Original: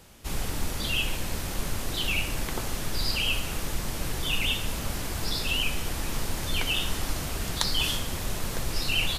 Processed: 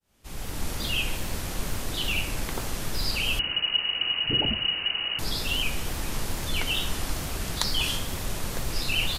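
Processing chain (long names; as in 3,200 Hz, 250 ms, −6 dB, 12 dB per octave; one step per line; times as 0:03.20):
fade in at the beginning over 0.71 s
tape wow and flutter 57 cents
0:03.39–0:05.19: voice inversion scrambler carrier 2,900 Hz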